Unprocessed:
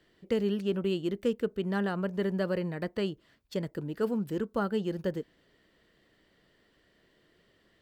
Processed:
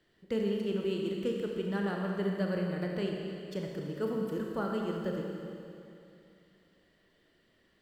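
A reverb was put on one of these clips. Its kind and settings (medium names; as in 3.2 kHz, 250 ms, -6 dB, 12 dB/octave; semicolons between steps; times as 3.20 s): Schroeder reverb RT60 2.7 s, combs from 28 ms, DRR 0 dB; trim -5 dB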